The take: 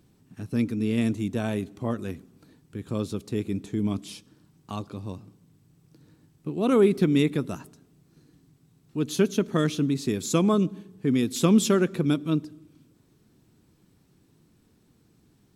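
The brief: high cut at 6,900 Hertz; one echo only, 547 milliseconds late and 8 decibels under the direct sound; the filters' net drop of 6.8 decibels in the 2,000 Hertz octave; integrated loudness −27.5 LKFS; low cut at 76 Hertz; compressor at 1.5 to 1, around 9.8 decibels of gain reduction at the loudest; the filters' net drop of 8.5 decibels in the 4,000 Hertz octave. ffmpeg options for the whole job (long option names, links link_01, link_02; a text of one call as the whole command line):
ffmpeg -i in.wav -af "highpass=76,lowpass=6900,equalizer=frequency=2000:width_type=o:gain=-7,equalizer=frequency=4000:width_type=o:gain=-8,acompressor=threshold=-43dB:ratio=1.5,aecho=1:1:547:0.398,volume=7.5dB" out.wav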